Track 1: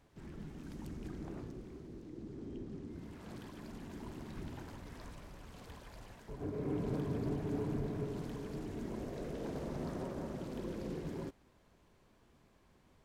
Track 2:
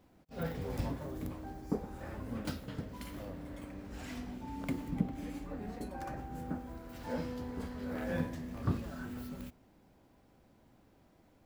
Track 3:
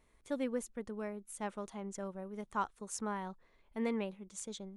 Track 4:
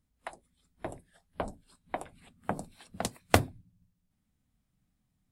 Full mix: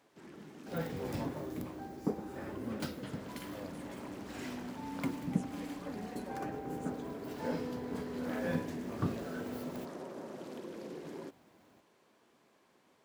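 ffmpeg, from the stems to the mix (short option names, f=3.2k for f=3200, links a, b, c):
-filter_complex "[0:a]highpass=280,acompressor=threshold=-43dB:ratio=6,volume=2.5dB[a];[1:a]highpass=130,adelay=350,volume=1dB[b];[2:a]adelay=2450,volume=-17dB[c];[a][b][c]amix=inputs=3:normalize=0"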